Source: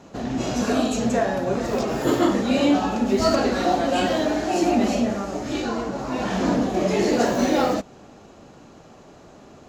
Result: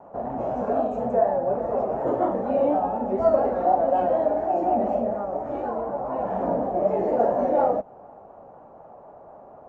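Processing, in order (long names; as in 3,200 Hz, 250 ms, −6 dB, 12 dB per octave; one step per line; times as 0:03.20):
drawn EQ curve 340 Hz 0 dB, 570 Hz +14 dB, 850 Hz +15 dB, 4,100 Hz −26 dB
pitch vibrato 4.1 Hz 54 cents
dynamic equaliser 1,100 Hz, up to −6 dB, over −22 dBFS, Q 0.97
level −8.5 dB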